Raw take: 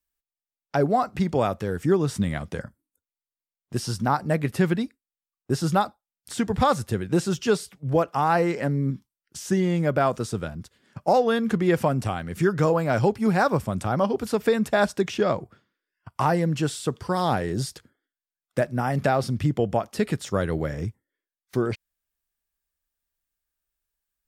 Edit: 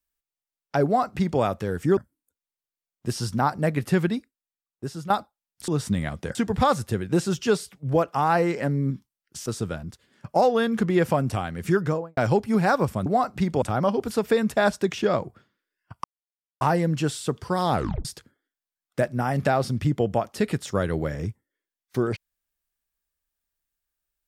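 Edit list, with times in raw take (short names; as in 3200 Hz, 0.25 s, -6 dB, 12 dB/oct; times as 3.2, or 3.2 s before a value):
0.85–1.41 copy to 13.78
1.97–2.64 move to 6.35
4.76–5.77 fade out, to -13.5 dB
9.46–10.18 cut
12.48–12.89 studio fade out
16.2 insert silence 0.57 s
17.33 tape stop 0.31 s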